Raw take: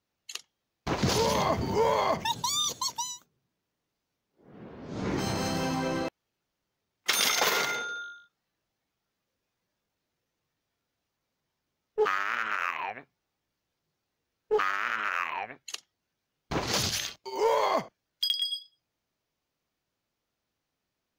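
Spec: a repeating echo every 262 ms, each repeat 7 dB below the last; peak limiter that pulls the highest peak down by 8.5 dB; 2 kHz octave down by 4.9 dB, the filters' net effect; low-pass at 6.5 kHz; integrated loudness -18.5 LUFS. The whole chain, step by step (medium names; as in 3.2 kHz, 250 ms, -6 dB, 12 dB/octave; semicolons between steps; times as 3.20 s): low-pass 6.5 kHz; peaking EQ 2 kHz -6.5 dB; peak limiter -23.5 dBFS; feedback delay 262 ms, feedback 45%, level -7 dB; trim +15.5 dB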